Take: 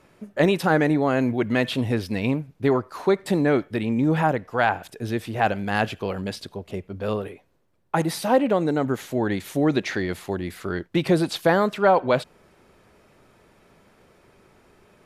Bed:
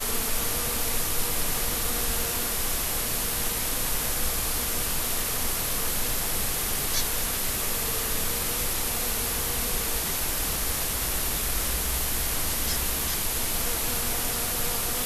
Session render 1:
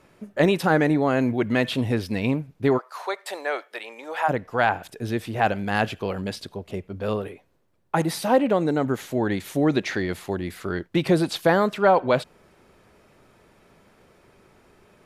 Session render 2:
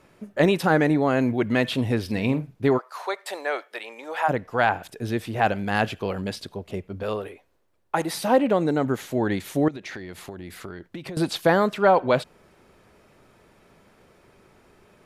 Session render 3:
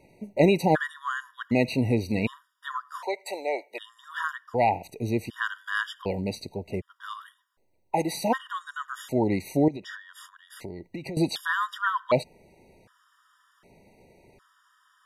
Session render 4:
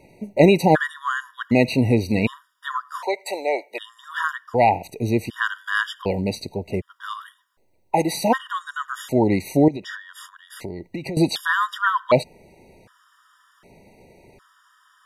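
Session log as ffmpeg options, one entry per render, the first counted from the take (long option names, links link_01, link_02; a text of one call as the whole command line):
ffmpeg -i in.wav -filter_complex "[0:a]asplit=3[link_01][link_02][link_03];[link_01]afade=type=out:start_time=2.77:duration=0.02[link_04];[link_02]highpass=frequency=580:width=0.5412,highpass=frequency=580:width=1.3066,afade=type=in:start_time=2.77:duration=0.02,afade=type=out:start_time=4.28:duration=0.02[link_05];[link_03]afade=type=in:start_time=4.28:duration=0.02[link_06];[link_04][link_05][link_06]amix=inputs=3:normalize=0" out.wav
ffmpeg -i in.wav -filter_complex "[0:a]asettb=1/sr,asplit=3[link_01][link_02][link_03];[link_01]atrim=end=2.014[link_04];[link_02]atrim=start=2.01:end=2.55,asetpts=PTS-STARTPTS,afade=type=in:duration=0.004:curve=qsin,afade=type=out:start_time=0.536:duration=0.004:curve=qsin,asplit=2[link_05][link_06];[link_06]adelay=47,volume=-12.5dB[link_07];[link_05][link_07]amix=inputs=2:normalize=0,atrim=end_sample=23814[link_08];[link_03]atrim=start=2.546[link_09];[link_04][link_08]acrossfade=duration=0.004:curve1=hsin:curve2=qsin[link_10];[link_10][link_09]acrossfade=duration=0.004:curve1=qsin:curve2=hsin,asettb=1/sr,asplit=3[link_11][link_12][link_13];[link_11]atrim=end=7.034[link_14];[link_12]atrim=start=7.03:end=8.14,asetpts=PTS-STARTPTS,afade=type=in:duration=0.004:curve=qsin,afade=type=out:start_time=1.106:duration=0.004:curve=qsin,equalizer=frequency=150:width_type=o:width=1.6:gain=-9[link_15];[link_13]atrim=start=8.136[link_16];[link_14][link_15]acrossfade=duration=0.004:curve1=hsin:curve2=qsin[link_17];[link_17][link_16]acrossfade=duration=0.004:curve1=qsin:curve2=hsin,asettb=1/sr,asplit=3[link_18][link_19][link_20];[link_18]atrim=end=9.684[link_21];[link_19]atrim=start=9.68:end=11.17,asetpts=PTS-STARTPTS,afade=type=in:duration=0.004:curve=qsin,afade=type=out:start_time=1.486:duration=0.004:curve=qsin,acompressor=threshold=-32dB:ratio=10:attack=3.2:release=140:knee=1:detection=peak[link_22];[link_20]atrim=start=11.166[link_23];[link_21][link_22]acrossfade=duration=0.004:curve1=hsin:curve2=qsin[link_24];[link_24][link_23]acrossfade=duration=0.004:curve1=qsin:curve2=hsin" out.wav
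ffmpeg -i in.wav -af "afftfilt=real='re*gt(sin(2*PI*0.66*pts/sr)*(1-2*mod(floor(b*sr/1024/950),2)),0)':imag='im*gt(sin(2*PI*0.66*pts/sr)*(1-2*mod(floor(b*sr/1024/950),2)),0)':win_size=1024:overlap=0.75" out.wav
ffmpeg -i in.wav -af "volume=6dB" out.wav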